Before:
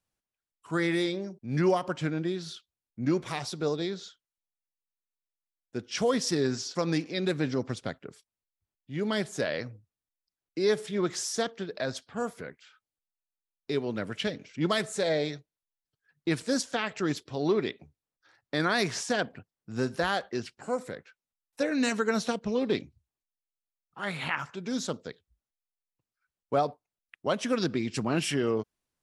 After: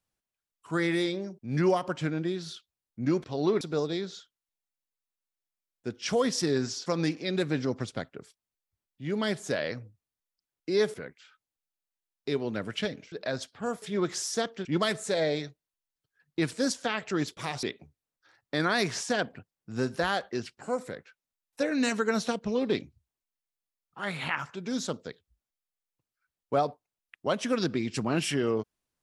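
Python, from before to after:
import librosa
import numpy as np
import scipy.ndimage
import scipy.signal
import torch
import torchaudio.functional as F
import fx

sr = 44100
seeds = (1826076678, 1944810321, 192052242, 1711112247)

y = fx.edit(x, sr, fx.swap(start_s=3.24, length_s=0.26, other_s=17.26, other_length_s=0.37),
    fx.swap(start_s=10.83, length_s=0.83, other_s=12.36, other_length_s=2.18), tone=tone)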